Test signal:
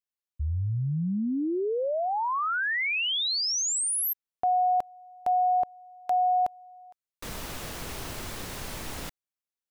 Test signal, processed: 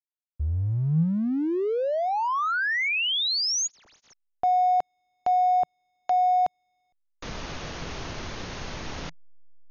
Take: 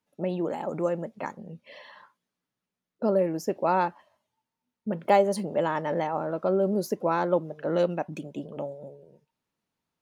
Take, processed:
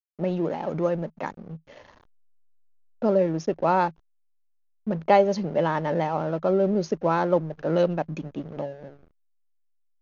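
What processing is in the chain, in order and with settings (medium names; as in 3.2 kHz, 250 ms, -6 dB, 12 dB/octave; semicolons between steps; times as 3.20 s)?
hysteresis with a dead band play -40.5 dBFS; dynamic bell 160 Hz, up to +6 dB, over -53 dBFS, Q 7.1; brick-wall FIR low-pass 6.8 kHz; trim +2.5 dB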